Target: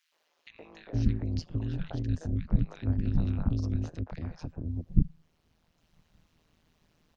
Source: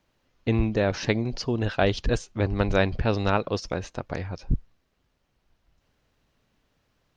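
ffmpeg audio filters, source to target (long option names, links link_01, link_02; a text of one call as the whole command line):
ffmpeg -i in.wav -filter_complex "[0:a]acrossover=split=150[link_01][link_02];[link_02]acompressor=threshold=-38dB:ratio=10[link_03];[link_01][link_03]amix=inputs=2:normalize=0,acrossover=split=460|1600[link_04][link_05][link_06];[link_05]adelay=120[link_07];[link_04]adelay=460[link_08];[link_08][link_07][link_06]amix=inputs=3:normalize=0,acrossover=split=150[link_09][link_10];[link_10]acompressor=threshold=-51dB:ratio=1.5[link_11];[link_09][link_11]amix=inputs=2:normalize=0,tremolo=f=160:d=0.947,volume=6dB" out.wav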